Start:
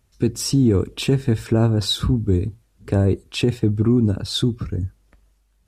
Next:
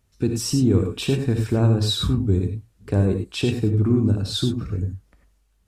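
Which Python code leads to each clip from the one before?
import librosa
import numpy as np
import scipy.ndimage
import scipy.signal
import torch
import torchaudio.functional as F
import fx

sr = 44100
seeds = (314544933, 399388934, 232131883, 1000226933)

y = fx.rev_gated(x, sr, seeds[0], gate_ms=120, shape='rising', drr_db=4.5)
y = y * 10.0 ** (-3.0 / 20.0)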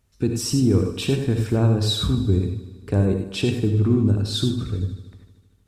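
y = fx.echo_heads(x, sr, ms=77, heads='first and second', feedback_pct=58, wet_db=-19.0)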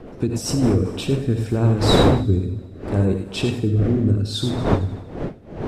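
y = fx.dmg_wind(x, sr, seeds[1], corner_hz=480.0, level_db=-25.0)
y = fx.rotary_switch(y, sr, hz=8.0, then_hz=0.7, switch_at_s=0.25)
y = y * 10.0 ** (1.5 / 20.0)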